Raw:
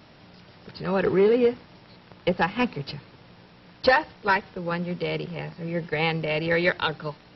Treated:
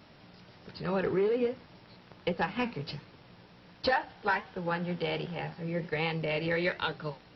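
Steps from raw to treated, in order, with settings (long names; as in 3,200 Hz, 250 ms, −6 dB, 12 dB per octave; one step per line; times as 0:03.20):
0:03.92–0:05.61: thirty-one-band graphic EQ 800 Hz +8 dB, 1,600 Hz +6 dB, 3,150 Hz +4 dB
downward compressor 2.5 to 1, threshold −23 dBFS, peak gain reduction 8.5 dB
flanger 1.3 Hz, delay 10 ms, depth 9.4 ms, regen −64%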